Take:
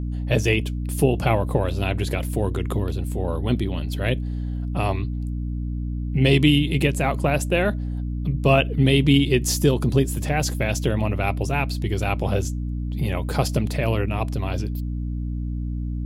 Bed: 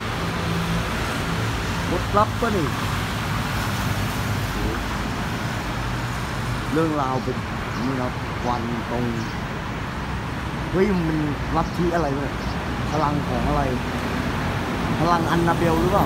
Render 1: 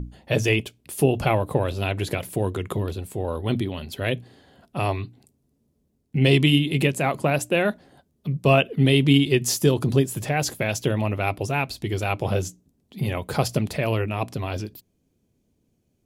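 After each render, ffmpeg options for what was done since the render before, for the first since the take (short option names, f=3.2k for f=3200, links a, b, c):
-af "bandreject=f=60:t=h:w=6,bandreject=f=120:t=h:w=6,bandreject=f=180:t=h:w=6,bandreject=f=240:t=h:w=6,bandreject=f=300:t=h:w=6"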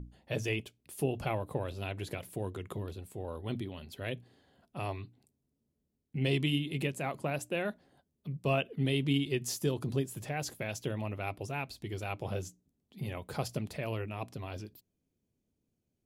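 -af "volume=-12.5dB"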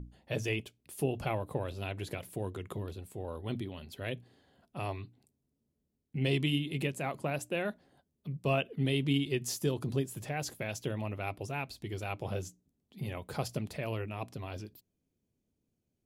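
-af anull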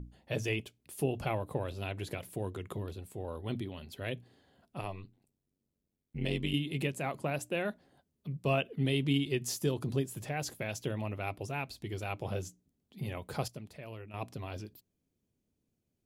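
-filter_complex "[0:a]asettb=1/sr,asplit=3[a][b][c];[a]atrim=end=4.814[d];[b]atrim=start=4.81:end=6.54,asetpts=PTS-STARTPTS,afade=t=in:d=0.004:c=qsin,afade=t=out:st=1.726:d=0.004:c=qsin,tremolo=f=95:d=0.857[e];[c]atrim=start=6.536[f];[d][e]acrossfade=d=0.004:c1=hsin:c2=qsin[g];[g][f]acrossfade=d=0.004:c1=qsin:c2=hsin,asplit=3[h][i][j];[h]atrim=end=13.482[k];[i]atrim=start=13.478:end=14.142,asetpts=PTS-STARTPTS,volume=-9.5dB[l];[j]atrim=start=14.138[m];[k][l]acrossfade=d=0.004:c1=hsin:c2=hsin[n];[n][m]acrossfade=d=0.004:c1=hsin:c2=hsin"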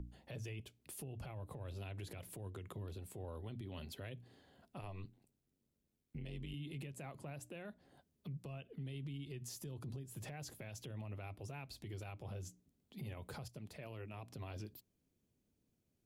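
-filter_complex "[0:a]acrossover=split=130[a][b];[b]acompressor=threshold=-42dB:ratio=6[c];[a][c]amix=inputs=2:normalize=0,alimiter=level_in=14.5dB:limit=-24dB:level=0:latency=1:release=116,volume=-14.5dB"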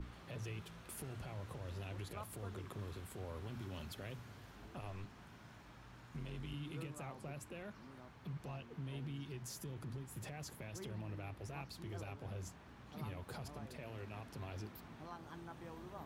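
-filter_complex "[1:a]volume=-32dB[a];[0:a][a]amix=inputs=2:normalize=0"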